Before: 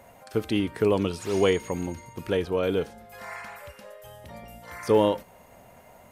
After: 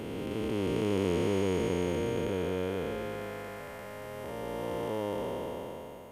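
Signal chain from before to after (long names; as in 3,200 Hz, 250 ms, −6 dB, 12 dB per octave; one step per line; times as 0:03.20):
spectrum smeared in time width 1,200 ms
level +1 dB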